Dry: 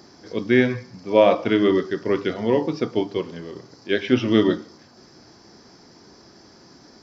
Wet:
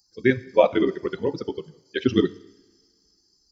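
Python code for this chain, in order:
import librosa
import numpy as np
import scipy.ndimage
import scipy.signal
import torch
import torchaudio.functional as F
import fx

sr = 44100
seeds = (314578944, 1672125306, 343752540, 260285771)

y = fx.bin_expand(x, sr, power=2.0)
y = fx.stretch_grains(y, sr, factor=0.5, grain_ms=33.0)
y = fx.rev_double_slope(y, sr, seeds[0], early_s=0.81, late_s=2.6, knee_db=-21, drr_db=16.5)
y = y * librosa.db_to_amplitude(2.5)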